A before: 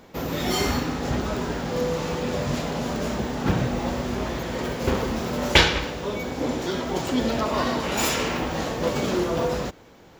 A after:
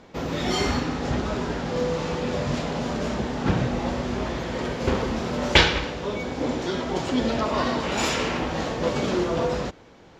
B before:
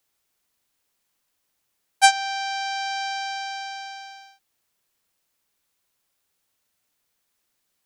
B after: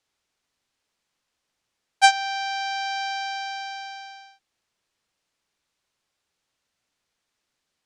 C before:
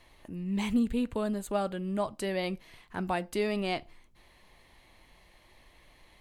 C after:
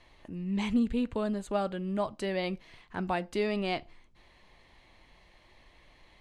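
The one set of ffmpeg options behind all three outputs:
-af "lowpass=6400"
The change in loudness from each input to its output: 0.0, −0.5, 0.0 LU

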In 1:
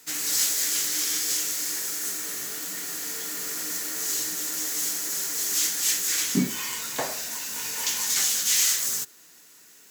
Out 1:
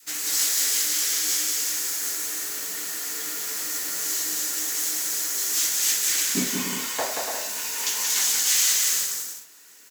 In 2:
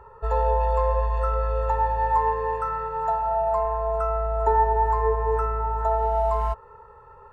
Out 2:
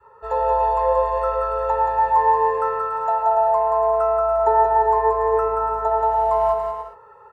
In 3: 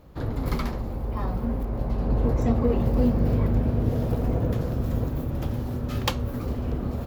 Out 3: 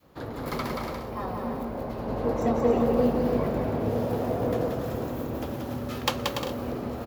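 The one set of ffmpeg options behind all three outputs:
-af "highpass=frequency=370:poles=1,adynamicequalizer=threshold=0.0158:dfrequency=610:dqfactor=0.74:tfrequency=610:tqfactor=0.74:attack=5:release=100:ratio=0.375:range=2.5:mode=boostabove:tftype=bell,aecho=1:1:180|288|352.8|391.7|415:0.631|0.398|0.251|0.158|0.1"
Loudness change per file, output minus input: +2.0, +4.5, −2.0 LU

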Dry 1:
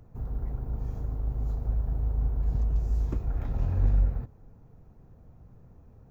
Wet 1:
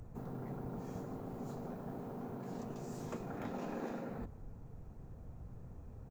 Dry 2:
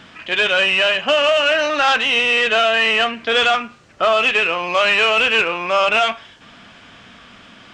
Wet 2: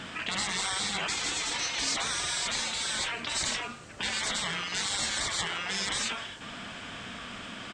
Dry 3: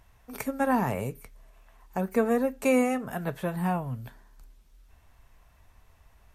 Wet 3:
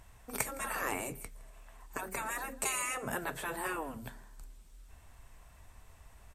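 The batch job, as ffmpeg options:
-af "afftfilt=real='re*lt(hypot(re,im),0.1)':imag='im*lt(hypot(re,im),0.1)':win_size=1024:overlap=0.75,equalizer=frequency=8100:width=3.2:gain=9.5,aecho=1:1:163:0.0794,volume=2dB"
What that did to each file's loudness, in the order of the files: −14.5, −15.0, −8.5 LU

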